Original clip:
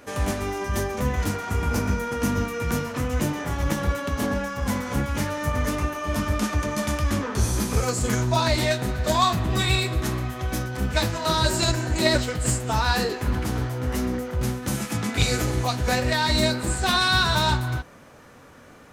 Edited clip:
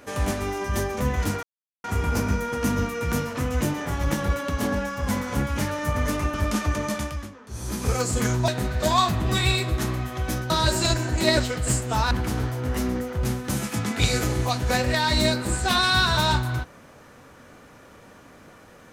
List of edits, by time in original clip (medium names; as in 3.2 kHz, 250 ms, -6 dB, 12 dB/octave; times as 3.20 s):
1.43 s: insert silence 0.41 s
5.93–6.22 s: delete
6.72–7.84 s: dip -17.5 dB, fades 0.46 s
8.36–8.72 s: delete
10.74–11.28 s: delete
12.89–13.29 s: delete